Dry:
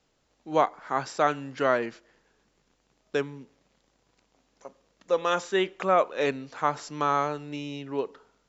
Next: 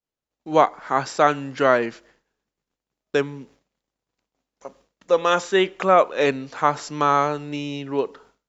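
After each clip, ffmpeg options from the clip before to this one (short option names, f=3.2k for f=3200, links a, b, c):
-af "agate=range=-33dB:threshold=-55dB:ratio=3:detection=peak,volume=6.5dB"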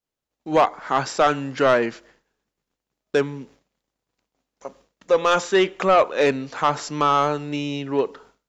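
-af "asoftclip=type=tanh:threshold=-11dB,volume=2.5dB"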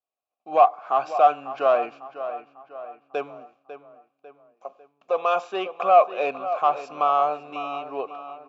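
-filter_complex "[0:a]asplit=3[a][b][c];[a]bandpass=f=730:t=q:w=8,volume=0dB[d];[b]bandpass=f=1.09k:t=q:w=8,volume=-6dB[e];[c]bandpass=f=2.44k:t=q:w=8,volume=-9dB[f];[d][e][f]amix=inputs=3:normalize=0,asplit=2[g][h];[h]adelay=548,lowpass=f=3.3k:p=1,volume=-12dB,asplit=2[i][j];[j]adelay=548,lowpass=f=3.3k:p=1,volume=0.48,asplit=2[k][l];[l]adelay=548,lowpass=f=3.3k:p=1,volume=0.48,asplit=2[m][n];[n]adelay=548,lowpass=f=3.3k:p=1,volume=0.48,asplit=2[o][p];[p]adelay=548,lowpass=f=3.3k:p=1,volume=0.48[q];[g][i][k][m][o][q]amix=inputs=6:normalize=0,volume=6.5dB"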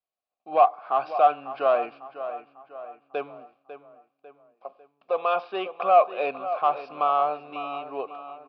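-af "aresample=11025,aresample=44100,volume=-2dB"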